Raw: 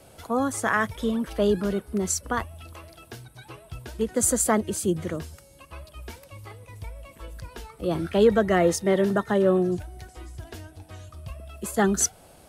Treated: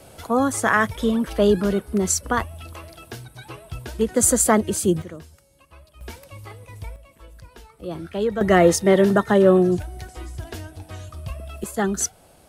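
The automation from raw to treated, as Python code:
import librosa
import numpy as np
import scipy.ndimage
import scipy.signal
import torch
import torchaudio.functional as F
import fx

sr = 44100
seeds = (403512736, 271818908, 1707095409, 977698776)

y = fx.gain(x, sr, db=fx.steps((0.0, 5.0), (5.02, -6.5), (6.01, 3.0), (6.96, -5.0), (8.41, 6.0), (11.64, -1.0)))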